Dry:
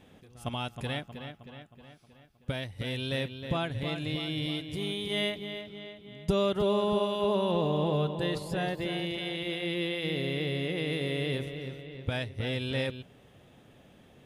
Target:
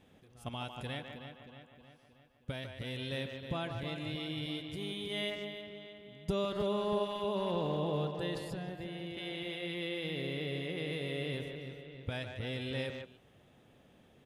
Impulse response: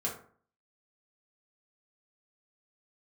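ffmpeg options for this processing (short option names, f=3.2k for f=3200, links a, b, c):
-filter_complex "[0:a]asettb=1/sr,asplit=3[a][b][c];[a]atrim=end=8.514[d];[b]atrim=start=8.51:end=9.17,asetpts=PTS-STARTPTS,afade=t=in:d=0.004:c=qsin,afade=t=out:st=0.656:d=0.004:c=qsin,acrossover=split=290[e][f];[f]acompressor=threshold=-38dB:ratio=6[g];[e][g]amix=inputs=2:normalize=0[h];[c]atrim=start=9.166[i];[d][h]acrossfade=d=0.004:c1=hsin:c2=qsin[j];[j][i]acrossfade=d=0.004:c1=qsin:c2=hsin,asplit=2[k][l];[l]adelay=150,highpass=300,lowpass=3.4k,asoftclip=type=hard:threshold=-24dB,volume=-6dB[m];[k][m]amix=inputs=2:normalize=0,volume=-6.5dB"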